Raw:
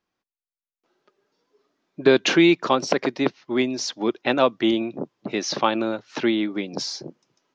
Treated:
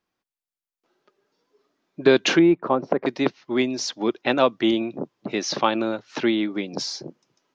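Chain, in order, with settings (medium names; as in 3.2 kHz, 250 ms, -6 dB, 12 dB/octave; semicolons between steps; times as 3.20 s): 2.39–3.06 s: low-pass 1.1 kHz 12 dB/octave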